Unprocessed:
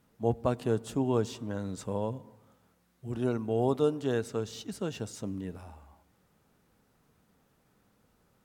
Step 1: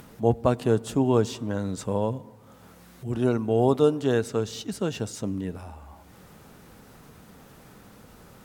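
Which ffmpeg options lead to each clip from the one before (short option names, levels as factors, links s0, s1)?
-af "acompressor=mode=upward:threshold=0.00631:ratio=2.5,volume=2.11"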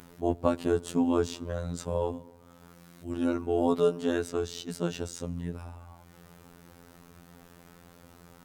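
-af "afftfilt=real='hypot(re,im)*cos(PI*b)':imag='0':win_size=2048:overlap=0.75"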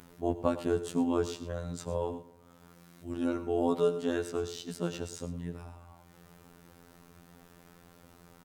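-af "aecho=1:1:90|111:0.112|0.178,volume=0.708"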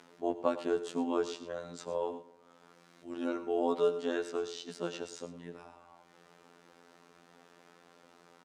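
-af "highpass=320,lowpass=6300"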